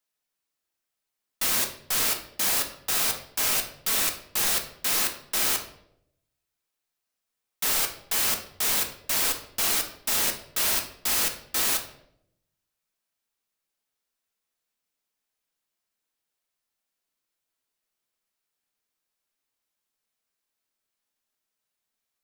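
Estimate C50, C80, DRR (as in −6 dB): 9.5 dB, 13.0 dB, 3.5 dB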